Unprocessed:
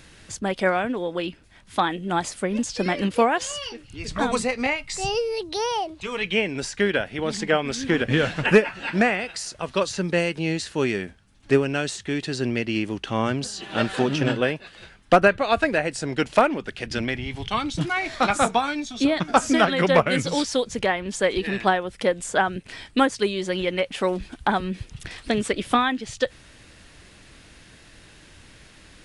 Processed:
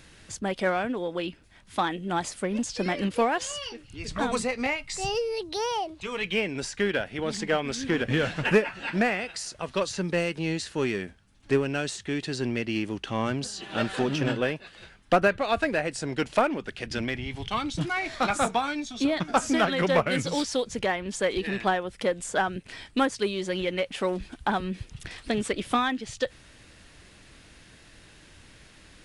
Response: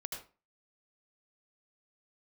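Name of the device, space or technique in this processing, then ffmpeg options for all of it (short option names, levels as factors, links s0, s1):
parallel distortion: -filter_complex "[0:a]asplit=2[s0][s1];[s1]asoftclip=type=hard:threshold=0.0891,volume=0.473[s2];[s0][s2]amix=inputs=2:normalize=0,volume=0.473"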